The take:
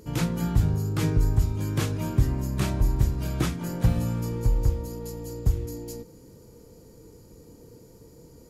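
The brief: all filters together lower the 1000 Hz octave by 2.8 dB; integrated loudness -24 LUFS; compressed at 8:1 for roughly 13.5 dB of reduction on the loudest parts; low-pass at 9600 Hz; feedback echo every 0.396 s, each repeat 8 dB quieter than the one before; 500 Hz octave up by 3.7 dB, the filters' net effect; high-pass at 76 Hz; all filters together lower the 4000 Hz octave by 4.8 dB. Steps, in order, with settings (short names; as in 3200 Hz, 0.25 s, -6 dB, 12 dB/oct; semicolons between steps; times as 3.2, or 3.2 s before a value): HPF 76 Hz; LPF 9600 Hz; bell 500 Hz +5.5 dB; bell 1000 Hz -5 dB; bell 4000 Hz -6 dB; compressor 8:1, threshold -33 dBFS; feedback echo 0.396 s, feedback 40%, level -8 dB; gain +14 dB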